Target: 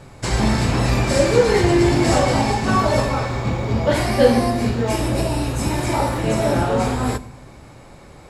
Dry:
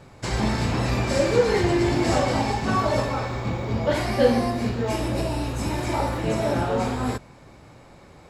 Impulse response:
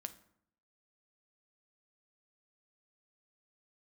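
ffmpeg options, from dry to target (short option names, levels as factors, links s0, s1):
-filter_complex "[0:a]asplit=2[s0][s1];[s1]equalizer=f=9800:w=1.1:g=10.5[s2];[1:a]atrim=start_sample=2205,asetrate=29988,aresample=44100,lowshelf=f=71:g=10[s3];[s2][s3]afir=irnorm=-1:irlink=0,volume=0.841[s4];[s0][s4]amix=inputs=2:normalize=0"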